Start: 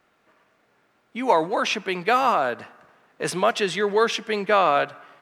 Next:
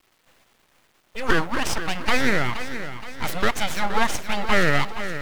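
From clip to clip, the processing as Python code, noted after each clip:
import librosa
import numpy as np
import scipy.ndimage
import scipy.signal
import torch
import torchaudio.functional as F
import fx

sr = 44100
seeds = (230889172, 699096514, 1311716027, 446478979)

y = fx.quant_dither(x, sr, seeds[0], bits=10, dither='none')
y = np.abs(y)
y = fx.echo_feedback(y, sr, ms=472, feedback_pct=49, wet_db=-11)
y = y * 10.0 ** (1.5 / 20.0)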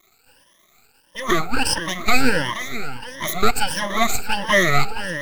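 y = fx.spec_ripple(x, sr, per_octave=1.2, drift_hz=1.5, depth_db=20)
y = fx.high_shelf(y, sr, hz=5200.0, db=7.0)
y = y * 10.0 ** (-2.0 / 20.0)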